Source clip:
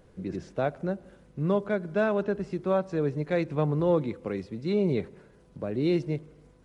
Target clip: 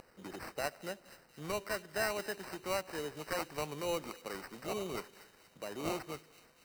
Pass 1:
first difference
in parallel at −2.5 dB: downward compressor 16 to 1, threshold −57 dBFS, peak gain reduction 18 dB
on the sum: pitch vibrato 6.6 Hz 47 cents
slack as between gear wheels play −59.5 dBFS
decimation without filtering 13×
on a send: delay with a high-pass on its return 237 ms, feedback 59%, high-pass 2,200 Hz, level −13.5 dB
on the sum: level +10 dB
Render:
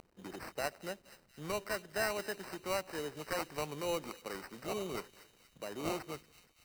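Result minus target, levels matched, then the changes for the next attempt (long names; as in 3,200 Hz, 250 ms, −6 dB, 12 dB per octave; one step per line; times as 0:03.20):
slack as between gear wheels: distortion +7 dB
change: slack as between gear wheels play −67.5 dBFS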